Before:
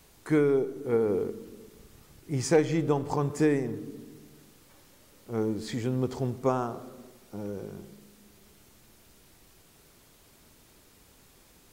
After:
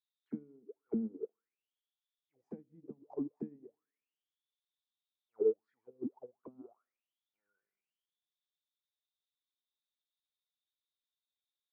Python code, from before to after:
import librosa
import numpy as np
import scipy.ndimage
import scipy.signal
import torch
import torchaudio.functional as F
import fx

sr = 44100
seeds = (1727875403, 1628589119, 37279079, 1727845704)

y = fx.auto_wah(x, sr, base_hz=220.0, top_hz=3900.0, q=16.0, full_db=-22.0, direction='down')
y = fx.upward_expand(y, sr, threshold_db=-53.0, expansion=2.5)
y = y * librosa.db_to_amplitude(9.0)